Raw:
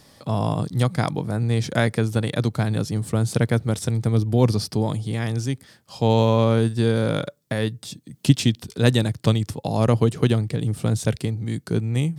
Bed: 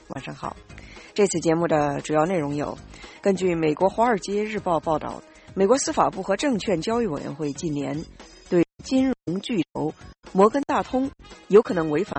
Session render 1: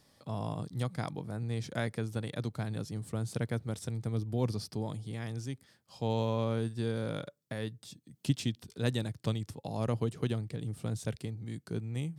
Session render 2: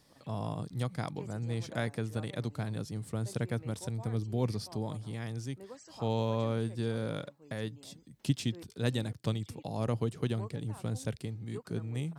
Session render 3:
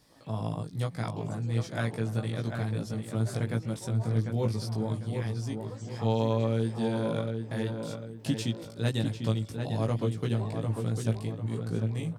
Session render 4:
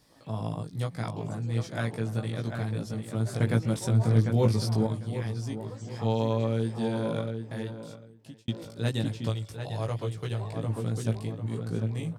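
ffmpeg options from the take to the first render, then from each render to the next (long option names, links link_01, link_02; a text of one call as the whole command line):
ffmpeg -i in.wav -af "volume=-13.5dB" out.wav
ffmpeg -i in.wav -i bed.wav -filter_complex "[1:a]volume=-30dB[link_01];[0:a][link_01]amix=inputs=2:normalize=0" out.wav
ffmpeg -i in.wav -filter_complex "[0:a]asplit=2[link_01][link_02];[link_02]adelay=18,volume=-2.5dB[link_03];[link_01][link_03]amix=inputs=2:normalize=0,asplit=2[link_04][link_05];[link_05]adelay=747,lowpass=frequency=2700:poles=1,volume=-5.5dB,asplit=2[link_06][link_07];[link_07]adelay=747,lowpass=frequency=2700:poles=1,volume=0.39,asplit=2[link_08][link_09];[link_09]adelay=747,lowpass=frequency=2700:poles=1,volume=0.39,asplit=2[link_10][link_11];[link_11]adelay=747,lowpass=frequency=2700:poles=1,volume=0.39,asplit=2[link_12][link_13];[link_13]adelay=747,lowpass=frequency=2700:poles=1,volume=0.39[link_14];[link_04][link_06][link_08][link_10][link_12][link_14]amix=inputs=6:normalize=0" out.wav
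ffmpeg -i in.wav -filter_complex "[0:a]asettb=1/sr,asplit=3[link_01][link_02][link_03];[link_01]atrim=end=3.404[link_04];[link_02]atrim=start=3.4:end=4.87,asetpts=PTS-STARTPTS,afade=type=in:duration=0.004:curve=qsin,afade=type=out:start_time=1.466:duration=0.004:curve=qsin,acontrast=39[link_05];[link_03]atrim=start=4.866[link_06];[link_04][link_05]acrossfade=duration=0.004:curve1=hsin:curve2=qsin[link_07];[link_07][link_06]acrossfade=duration=0.004:curve1=qsin:curve2=hsin,asettb=1/sr,asplit=3[link_08][link_09][link_10];[link_08]atrim=end=9.294[link_11];[link_09]atrim=start=9.29:end=10.56,asetpts=PTS-STARTPTS,afade=type=in:duration=0.004:curve=qsin,afade=type=out:start_time=1.266:duration=0.004:curve=qsin,equalizer=frequency=240:width_type=o:width=0.97:gain=-12[link_12];[link_10]atrim=start=10.556[link_13];[link_11][link_12]acrossfade=duration=0.004:curve1=hsin:curve2=qsin[link_14];[link_14][link_13]acrossfade=duration=0.004:curve1=qsin:curve2=hsin,asplit=2[link_15][link_16];[link_15]atrim=end=8.48,asetpts=PTS-STARTPTS,afade=type=out:start_time=7.21:duration=1.27[link_17];[link_16]atrim=start=8.48,asetpts=PTS-STARTPTS,afade=type=in:duration=0.004:curve=hsin[link_18];[link_17][link_18]concat=n=2:v=0:a=1" out.wav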